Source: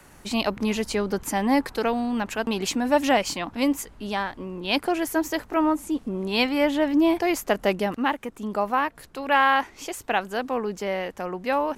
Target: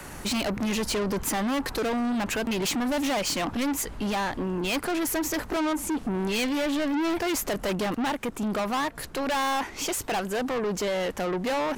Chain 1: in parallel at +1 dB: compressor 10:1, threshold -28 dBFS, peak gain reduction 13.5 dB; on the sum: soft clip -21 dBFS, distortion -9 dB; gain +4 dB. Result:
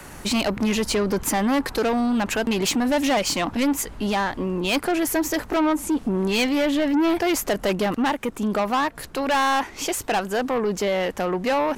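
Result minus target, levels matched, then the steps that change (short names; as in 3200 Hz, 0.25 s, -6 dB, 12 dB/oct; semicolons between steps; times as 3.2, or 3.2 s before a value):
soft clip: distortion -4 dB
change: soft clip -28.5 dBFS, distortion -4 dB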